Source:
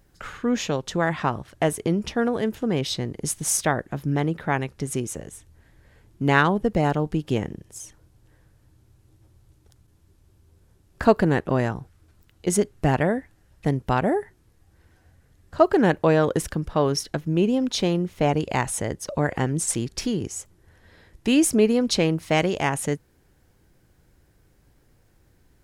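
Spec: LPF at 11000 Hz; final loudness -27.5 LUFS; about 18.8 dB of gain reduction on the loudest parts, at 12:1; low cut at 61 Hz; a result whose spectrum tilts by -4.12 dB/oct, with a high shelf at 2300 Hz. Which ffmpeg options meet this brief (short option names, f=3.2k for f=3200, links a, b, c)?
-af "highpass=61,lowpass=11k,highshelf=f=2.3k:g=4,acompressor=threshold=-29dB:ratio=12,volume=7dB"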